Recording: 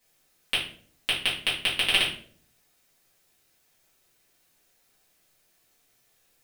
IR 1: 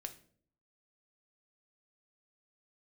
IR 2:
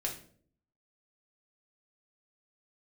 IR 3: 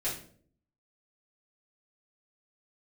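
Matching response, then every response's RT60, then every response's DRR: 3; 0.55, 0.55, 0.55 s; 6.0, -1.0, -9.5 dB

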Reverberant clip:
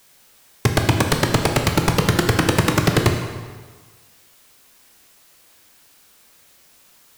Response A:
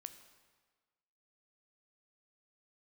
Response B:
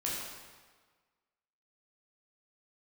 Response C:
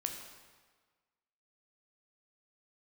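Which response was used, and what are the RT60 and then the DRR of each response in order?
C; 1.5, 1.5, 1.5 s; 9.0, -5.5, 3.0 dB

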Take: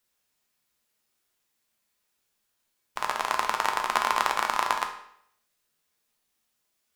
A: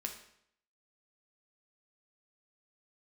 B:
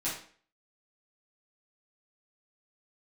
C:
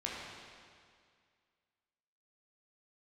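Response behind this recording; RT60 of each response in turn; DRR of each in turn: A; 0.70, 0.45, 2.1 s; 3.0, -10.5, -5.0 dB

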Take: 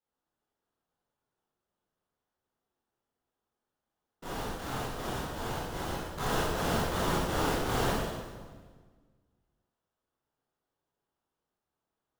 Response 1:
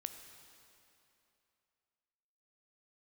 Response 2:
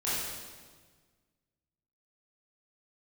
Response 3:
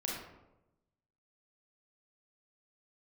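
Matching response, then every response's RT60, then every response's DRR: 2; 2.9, 1.5, 0.95 s; 7.0, -10.5, -3.5 dB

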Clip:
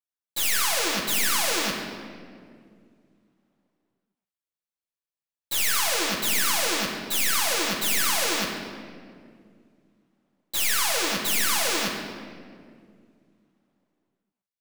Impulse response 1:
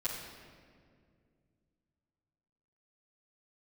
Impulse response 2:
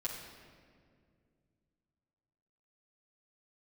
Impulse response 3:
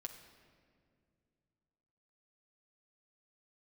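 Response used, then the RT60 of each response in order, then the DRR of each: 2; 2.1, 2.2, 2.2 s; -11.0, -6.0, 3.0 dB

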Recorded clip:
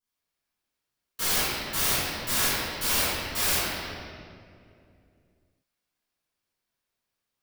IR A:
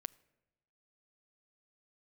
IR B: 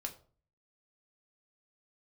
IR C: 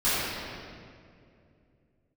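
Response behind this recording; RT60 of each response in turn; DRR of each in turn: C; 1.0, 0.45, 2.4 s; 18.0, 3.0, -15.5 dB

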